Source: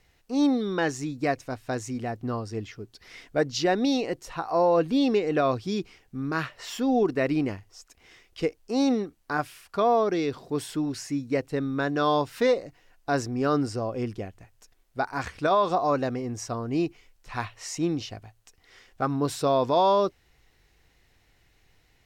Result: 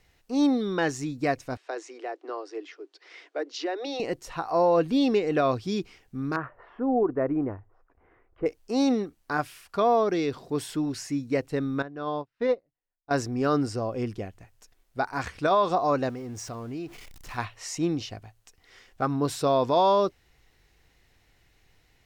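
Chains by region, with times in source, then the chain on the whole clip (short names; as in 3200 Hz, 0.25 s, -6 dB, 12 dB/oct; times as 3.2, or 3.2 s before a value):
1.57–4 steep high-pass 300 Hz 96 dB/oct + compressor 2.5:1, threshold -28 dBFS + air absorption 110 m
6.36–8.46 LPF 1400 Hz 24 dB/oct + bell 180 Hz -9 dB 0.57 oct
11.82–13.11 tape spacing loss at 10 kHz 24 dB + upward expander 2.5:1, over -41 dBFS
16.09–17.38 zero-crossing step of -42.5 dBFS + compressor 2.5:1, threshold -36 dBFS
whole clip: dry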